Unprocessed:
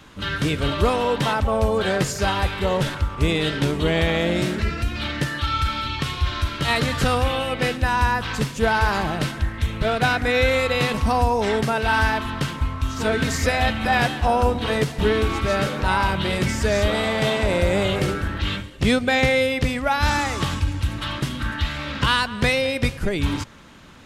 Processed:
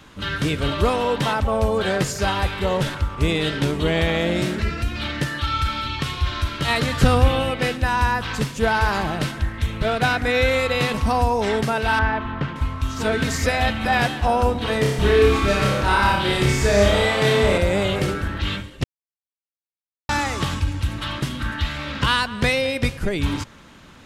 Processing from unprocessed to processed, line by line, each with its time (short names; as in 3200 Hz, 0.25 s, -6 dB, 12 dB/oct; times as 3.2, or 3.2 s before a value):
7.02–7.51 low shelf 410 Hz +7.5 dB
11.99–12.56 LPF 2100 Hz
14.8–17.58 flutter echo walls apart 5.1 m, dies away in 0.67 s
18.84–20.09 mute